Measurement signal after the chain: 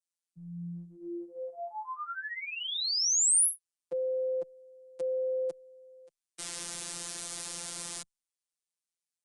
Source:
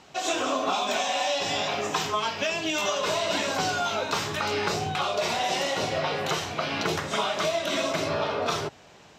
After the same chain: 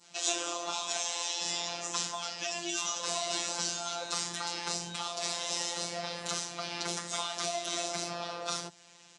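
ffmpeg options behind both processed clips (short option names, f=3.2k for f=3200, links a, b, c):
-filter_complex "[0:a]adynamicequalizer=threshold=0.00631:dfrequency=2500:dqfactor=1.1:tfrequency=2500:tqfactor=1.1:attack=5:release=100:ratio=0.375:range=3:mode=cutabove:tftype=bell,acrossover=split=110|820|3000[a][b][c][d];[a]acompressor=threshold=-50dB:ratio=6[e];[e][b][c][d]amix=inputs=4:normalize=0,afreqshift=25,crystalizer=i=5.5:c=0,aresample=22050,aresample=44100,afftfilt=real='hypot(re,im)*cos(PI*b)':imag='0':win_size=1024:overlap=0.75,volume=-8.5dB"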